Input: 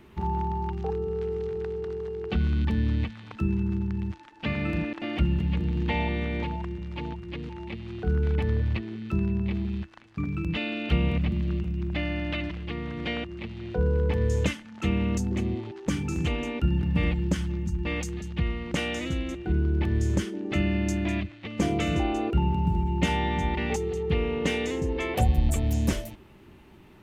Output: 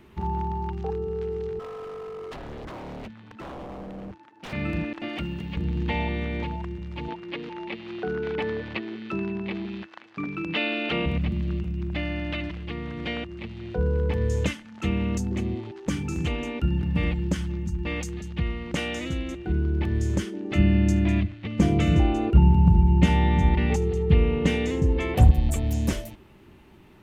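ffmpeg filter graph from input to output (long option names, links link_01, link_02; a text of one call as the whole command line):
ffmpeg -i in.wav -filter_complex "[0:a]asettb=1/sr,asplit=3[link_01][link_02][link_03];[link_01]atrim=end=1.594[link_04];[link_02]atrim=start=1.59:end=4.53,asetpts=PTS-STARTPTS,afade=type=in:duration=0.004:curve=qsin,afade=type=out:start_time=2.936:duration=0.004:curve=qsin,highpass=130,highshelf=frequency=2100:gain=-11,aeval=exprs='0.0224*(abs(mod(val(0)/0.0224+3,4)-2)-1)':channel_layout=same[link_05];[link_03]atrim=start=4.526[link_06];[link_04][link_05]acrossfade=duration=0.004:curve1=hsin:curve2=qsin[link_07];[link_07][link_06]acrossfade=duration=0.004:curve1=qsin:curve2=hsin,asettb=1/sr,asplit=3[link_08][link_09][link_10];[link_08]atrim=end=5.084[link_11];[link_09]atrim=start=5.08:end=5.57,asetpts=PTS-STARTPTS,afade=type=in:duration=0.004:curve=qsin,afade=type=out:start_time=0.486:duration=0.004:curve=qsin,highpass=frequency=280:poles=1,highshelf=frequency=5900:gain=5.5[link_12];[link_10]atrim=start=5.566[link_13];[link_11][link_12]acrossfade=duration=0.004:curve1=hsin:curve2=qsin[link_14];[link_14][link_13]acrossfade=duration=0.004:curve1=qsin:curve2=hsin,asettb=1/sr,asplit=3[link_15][link_16][link_17];[link_15]atrim=end=7.084[link_18];[link_16]atrim=start=7.08:end=11.06,asetpts=PTS-STARTPTS,afade=type=in:duration=0.004:curve=qsin,afade=type=out:start_time=3.976:duration=0.004:curve=qsin,acontrast=57,highpass=320,lowpass=4800[link_19];[link_17]atrim=start=11.056[link_20];[link_18][link_19]acrossfade=duration=0.004:curve1=hsin:curve2=qsin[link_21];[link_21][link_20]acrossfade=duration=0.004:curve1=qsin:curve2=hsin,asettb=1/sr,asplit=3[link_22][link_23][link_24];[link_22]atrim=end=20.584[link_25];[link_23]atrim=start=20.58:end=25.31,asetpts=PTS-STARTPTS,afade=type=in:duration=0.004:curve=qsin,afade=type=out:start_time=4.726:duration=0.004:curve=qsin,bass=frequency=250:gain=9,treble=frequency=4000:gain=-2,volume=7.5dB,asoftclip=hard,volume=-7.5dB,aecho=1:1:75:0.106,atrim=end_sample=208593[link_26];[link_24]atrim=start=25.306[link_27];[link_25][link_26]acrossfade=duration=0.004:curve1=hsin:curve2=qsin[link_28];[link_28][link_27]acrossfade=duration=0.004:curve1=qsin:curve2=hsin" out.wav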